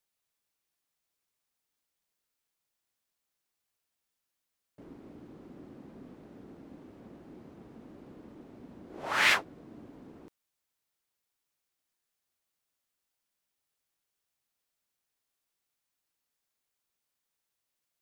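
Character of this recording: noise floor -85 dBFS; spectral tilt -1.5 dB/oct

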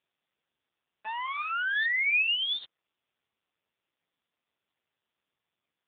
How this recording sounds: random-step tremolo 1.8 Hz; AMR-NB

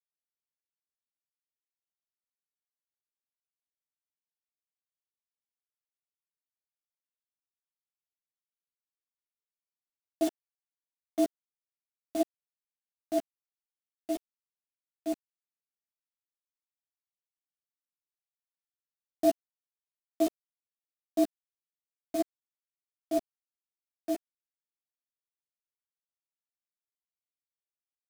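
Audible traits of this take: a quantiser's noise floor 6-bit, dither none; tremolo saw up 3 Hz, depth 90%; a shimmering, thickened sound

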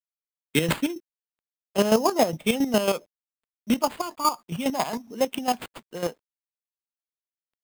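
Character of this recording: aliases and images of a low sample rate 5800 Hz, jitter 0%; chopped level 7.3 Hz, depth 65%, duty 30%; a quantiser's noise floor 12-bit, dither none

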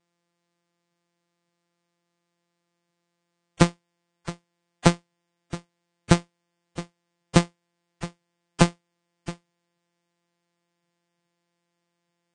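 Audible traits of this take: a buzz of ramps at a fixed pitch in blocks of 256 samples; Vorbis

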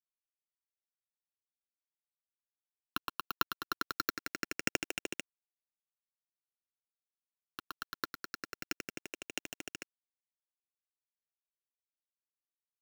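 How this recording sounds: a buzz of ramps at a fixed pitch in blocks of 32 samples; chopped level 1.5 Hz, depth 60%, duty 15%; phasing stages 6, 0.24 Hz, lowest notch 560–1200 Hz; a quantiser's noise floor 10-bit, dither none

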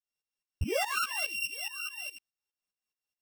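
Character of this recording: a buzz of ramps at a fixed pitch in blocks of 16 samples; tremolo saw up 4.8 Hz, depth 90%; a shimmering, thickened sound

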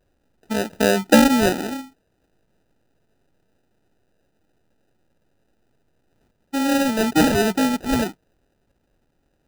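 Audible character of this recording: a quantiser's noise floor 12-bit, dither triangular; phasing stages 6, 0.23 Hz, lowest notch 640–1300 Hz; aliases and images of a low sample rate 1100 Hz, jitter 0%

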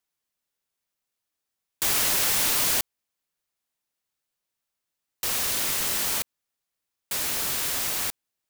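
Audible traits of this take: noise floor -84 dBFS; spectral tilt 0.0 dB/oct

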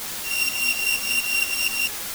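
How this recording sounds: a buzz of ramps at a fixed pitch in blocks of 16 samples; tremolo saw up 4.2 Hz, depth 85%; a quantiser's noise floor 6-bit, dither triangular; a shimmering, thickened sound

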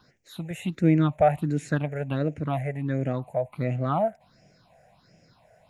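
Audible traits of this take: phasing stages 6, 1.4 Hz, lowest notch 280–1100 Hz

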